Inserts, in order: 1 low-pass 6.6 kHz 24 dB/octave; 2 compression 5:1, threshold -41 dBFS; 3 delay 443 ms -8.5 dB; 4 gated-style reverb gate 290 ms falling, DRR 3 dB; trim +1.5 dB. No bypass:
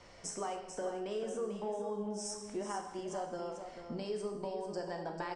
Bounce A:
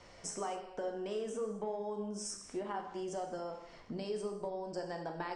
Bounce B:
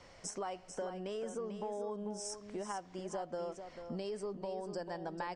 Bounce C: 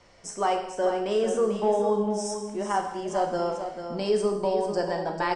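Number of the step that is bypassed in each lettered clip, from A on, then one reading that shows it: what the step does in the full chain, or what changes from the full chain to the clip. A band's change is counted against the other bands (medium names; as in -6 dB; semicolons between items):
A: 3, echo-to-direct -1.5 dB to -3.0 dB; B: 4, echo-to-direct -1.5 dB to -8.5 dB; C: 2, mean gain reduction 10.0 dB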